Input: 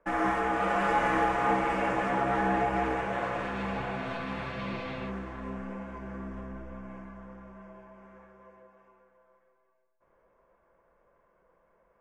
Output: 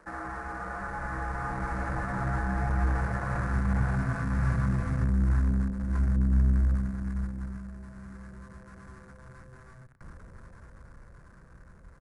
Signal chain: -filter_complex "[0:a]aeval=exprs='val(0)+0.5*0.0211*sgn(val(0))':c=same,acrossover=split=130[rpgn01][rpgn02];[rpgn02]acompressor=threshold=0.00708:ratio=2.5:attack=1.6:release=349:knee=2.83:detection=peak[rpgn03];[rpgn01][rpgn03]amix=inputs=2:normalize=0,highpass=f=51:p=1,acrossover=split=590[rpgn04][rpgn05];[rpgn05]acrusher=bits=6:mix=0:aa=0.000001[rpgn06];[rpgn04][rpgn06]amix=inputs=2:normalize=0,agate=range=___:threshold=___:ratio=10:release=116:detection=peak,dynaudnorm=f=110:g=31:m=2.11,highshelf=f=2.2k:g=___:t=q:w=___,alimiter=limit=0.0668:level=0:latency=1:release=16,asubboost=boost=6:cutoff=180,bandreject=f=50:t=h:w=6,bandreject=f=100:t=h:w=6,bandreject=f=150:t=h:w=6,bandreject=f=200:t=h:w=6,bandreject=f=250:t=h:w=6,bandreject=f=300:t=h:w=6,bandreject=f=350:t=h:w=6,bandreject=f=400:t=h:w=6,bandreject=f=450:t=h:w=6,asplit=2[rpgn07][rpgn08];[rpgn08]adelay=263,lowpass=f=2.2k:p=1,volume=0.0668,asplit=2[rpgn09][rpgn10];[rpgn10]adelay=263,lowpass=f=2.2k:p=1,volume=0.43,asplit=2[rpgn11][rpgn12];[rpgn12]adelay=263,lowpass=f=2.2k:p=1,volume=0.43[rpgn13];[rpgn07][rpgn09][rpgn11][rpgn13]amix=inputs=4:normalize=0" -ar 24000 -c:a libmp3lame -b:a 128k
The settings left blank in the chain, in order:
0.282, 0.00794, -12, 3